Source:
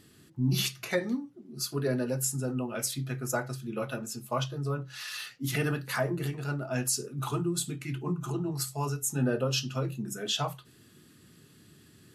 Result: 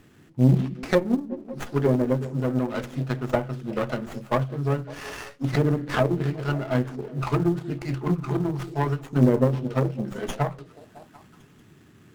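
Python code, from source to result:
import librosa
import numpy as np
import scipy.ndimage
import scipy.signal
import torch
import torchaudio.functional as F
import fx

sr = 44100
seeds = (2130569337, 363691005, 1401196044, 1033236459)

p1 = fx.cheby_harmonics(x, sr, harmonics=(3, 4, 6, 7), levels_db=(-45, -22, -36, -23), full_scale_db=-14.5)
p2 = fx.env_lowpass_down(p1, sr, base_hz=710.0, full_db=-26.5)
p3 = fx.quant_float(p2, sr, bits=2)
p4 = p2 + (p3 * librosa.db_to_amplitude(-11.5))
p5 = fx.echo_stepped(p4, sr, ms=185, hz=240.0, octaves=0.7, feedback_pct=70, wet_db=-11.5)
p6 = fx.running_max(p5, sr, window=9)
y = p6 * librosa.db_to_amplitude(8.5)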